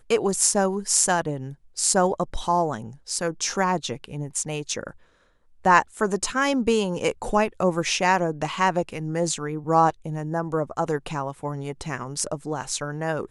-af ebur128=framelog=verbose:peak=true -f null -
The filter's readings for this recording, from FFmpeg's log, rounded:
Integrated loudness:
  I:         -24.1 LUFS
  Threshold: -34.4 LUFS
Loudness range:
  LRA:         4.8 LU
  Threshold: -44.5 LUFS
  LRA low:   -27.4 LUFS
  LRA high:  -22.6 LUFS
True peak:
  Peak:       -1.7 dBFS